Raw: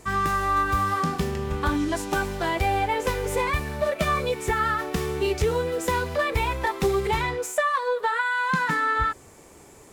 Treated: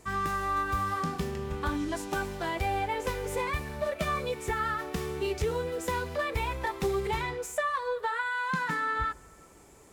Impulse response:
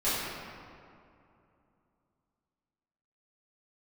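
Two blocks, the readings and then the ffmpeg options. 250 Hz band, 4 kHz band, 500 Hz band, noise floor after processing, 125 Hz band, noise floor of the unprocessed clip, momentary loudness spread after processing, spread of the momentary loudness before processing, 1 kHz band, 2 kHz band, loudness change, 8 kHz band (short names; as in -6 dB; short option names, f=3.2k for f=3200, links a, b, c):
-6.5 dB, -6.5 dB, -6.5 dB, -55 dBFS, -6.5 dB, -50 dBFS, 4 LU, 4 LU, -6.5 dB, -6.5 dB, -6.5 dB, -6.5 dB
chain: -filter_complex "[0:a]asplit=2[a][b];[1:a]atrim=start_sample=2205,lowshelf=f=140:g=11,adelay=11[c];[b][c]afir=irnorm=-1:irlink=0,volume=-35dB[d];[a][d]amix=inputs=2:normalize=0,volume=-6.5dB"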